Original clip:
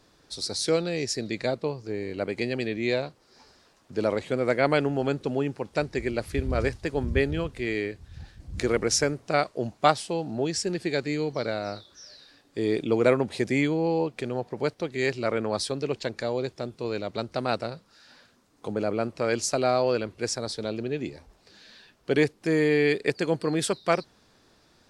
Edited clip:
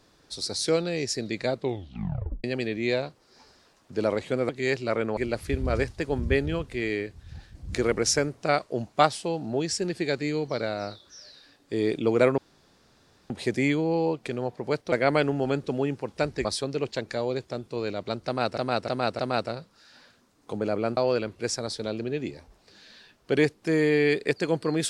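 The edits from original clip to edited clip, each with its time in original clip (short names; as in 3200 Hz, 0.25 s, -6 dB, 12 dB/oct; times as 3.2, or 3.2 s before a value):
1.56 tape stop 0.88 s
4.49–6.02 swap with 14.85–15.53
13.23 insert room tone 0.92 s
17.34–17.65 loop, 4 plays
19.12–19.76 cut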